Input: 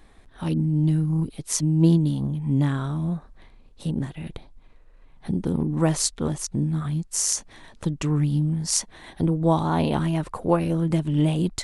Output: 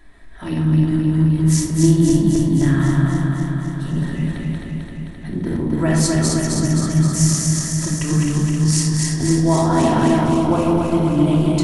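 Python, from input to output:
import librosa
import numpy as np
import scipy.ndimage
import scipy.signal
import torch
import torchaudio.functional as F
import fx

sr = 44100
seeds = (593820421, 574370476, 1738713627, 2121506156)

y = fx.reverse_delay_fb(x, sr, ms=131, feedback_pct=83, wet_db=-2)
y = fx.peak_eq(y, sr, hz=1800.0, db=fx.steps((0.0, 11.5), (10.23, -6.5)), octaves=0.25)
y = fx.room_shoebox(y, sr, seeds[0], volume_m3=2000.0, walls='furnished', distance_m=2.9)
y = y * 10.0 ** (-1.5 / 20.0)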